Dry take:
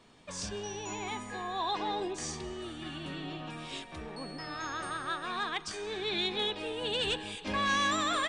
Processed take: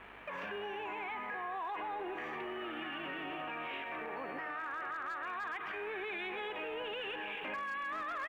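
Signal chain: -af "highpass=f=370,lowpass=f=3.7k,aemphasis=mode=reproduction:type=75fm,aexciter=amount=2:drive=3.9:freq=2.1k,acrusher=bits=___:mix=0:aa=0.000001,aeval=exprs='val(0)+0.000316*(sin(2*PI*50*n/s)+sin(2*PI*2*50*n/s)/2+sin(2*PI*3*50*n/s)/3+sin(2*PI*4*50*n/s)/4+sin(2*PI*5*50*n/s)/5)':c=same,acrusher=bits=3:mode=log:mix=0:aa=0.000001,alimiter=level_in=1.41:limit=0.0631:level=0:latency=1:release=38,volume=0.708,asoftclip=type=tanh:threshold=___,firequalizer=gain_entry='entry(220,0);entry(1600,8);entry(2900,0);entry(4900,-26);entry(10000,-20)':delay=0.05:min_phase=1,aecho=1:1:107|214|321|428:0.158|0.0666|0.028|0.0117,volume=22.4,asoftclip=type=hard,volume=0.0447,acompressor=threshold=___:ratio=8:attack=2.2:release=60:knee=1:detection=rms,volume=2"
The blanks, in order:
9, 0.0251, 0.00708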